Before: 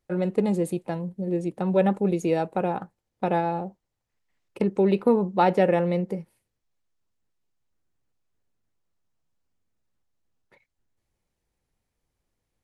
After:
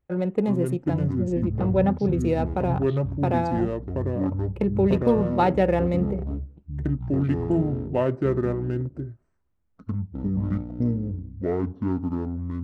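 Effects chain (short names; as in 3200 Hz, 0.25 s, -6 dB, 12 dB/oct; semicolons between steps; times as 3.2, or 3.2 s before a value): Wiener smoothing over 9 samples; bell 73 Hz +8.5 dB 1.5 oct; echoes that change speed 0.334 s, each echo -6 st, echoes 3; 1.18–2.18 high shelf 5900 Hz -12 dB; gain -1 dB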